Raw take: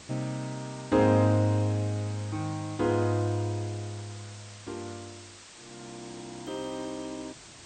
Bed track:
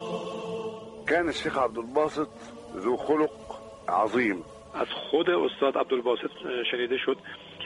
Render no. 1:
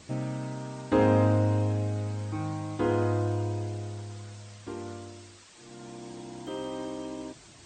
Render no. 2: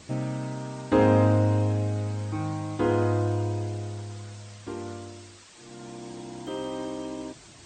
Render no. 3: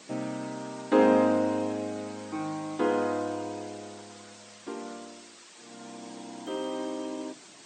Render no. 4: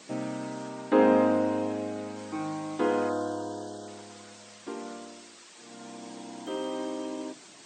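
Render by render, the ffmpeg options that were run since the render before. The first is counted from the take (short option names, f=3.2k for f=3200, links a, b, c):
-af "afftdn=nr=6:nf=-49"
-af "volume=2.5dB"
-af "highpass=f=190:w=0.5412,highpass=f=190:w=1.3066,bandreject=f=50:t=h:w=6,bandreject=f=100:t=h:w=6,bandreject=f=150:t=h:w=6,bandreject=f=200:t=h:w=6,bandreject=f=250:t=h:w=6,bandreject=f=300:t=h:w=6,bandreject=f=350:t=h:w=6"
-filter_complex "[0:a]asettb=1/sr,asplit=3[a][b][c];[a]atrim=end=0.694[d];[b]atrim=start=0.69:end=2.16,asetpts=PTS-STARTPTS,afade=t=in:d=0.004:c=qsin,afade=t=out:st=1.466:d=0.004:c=qsin,acrossover=split=3300[e][f];[f]acompressor=threshold=-53dB:ratio=4:attack=1:release=60[g];[e][g]amix=inputs=2:normalize=0[h];[c]atrim=start=2.156[i];[d][h]acrossfade=d=0.004:c1=hsin:c2=qsin[j];[j][i]acrossfade=d=0.004:c1=qsin:c2=hsin,asettb=1/sr,asplit=3[k][l][m];[k]atrim=end=3.094[n];[l]atrim=start=3.09:end=3.88,asetpts=PTS-STARTPTS,afade=t=in:d=0.004:c=qsin,afade=t=out:st=0.786:d=0.004:c=qsin,asuperstop=centerf=2300:order=8:qfactor=1.8[o];[m]atrim=start=3.876[p];[n][o]acrossfade=d=0.004:c1=hsin:c2=qsin[q];[q][p]acrossfade=d=0.004:c1=qsin:c2=hsin"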